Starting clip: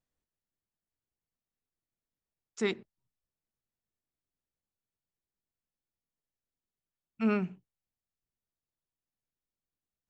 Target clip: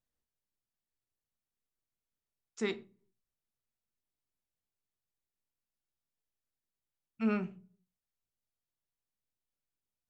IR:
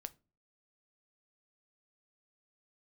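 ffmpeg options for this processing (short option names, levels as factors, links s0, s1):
-filter_complex "[1:a]atrim=start_sample=2205,asetrate=36162,aresample=44100[s0];[0:a][s0]afir=irnorm=-1:irlink=0"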